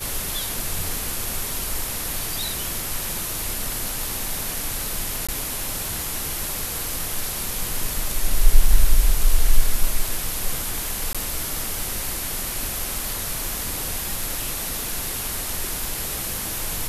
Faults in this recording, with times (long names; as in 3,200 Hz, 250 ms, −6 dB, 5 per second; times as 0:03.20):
0:05.27–0:05.29: drop-out 16 ms
0:11.13–0:11.15: drop-out 16 ms